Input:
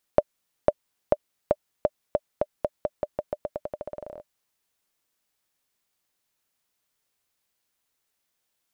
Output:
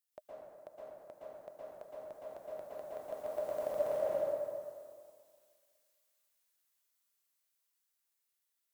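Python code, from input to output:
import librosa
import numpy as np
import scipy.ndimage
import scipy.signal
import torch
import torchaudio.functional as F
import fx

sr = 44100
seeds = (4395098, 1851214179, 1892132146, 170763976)

p1 = fx.doppler_pass(x, sr, speed_mps=7, closest_m=2.3, pass_at_s=3.61)
p2 = fx.tilt_eq(p1, sr, slope=3.0)
p3 = p2 + fx.echo_feedback(p2, sr, ms=203, feedback_pct=53, wet_db=-18.0, dry=0)
p4 = fx.hpss(p3, sr, part='percussive', gain_db=-16)
p5 = fx.rev_plate(p4, sr, seeds[0], rt60_s=1.9, hf_ratio=0.45, predelay_ms=105, drr_db=-8.0)
y = p5 * librosa.db_to_amplitude(6.0)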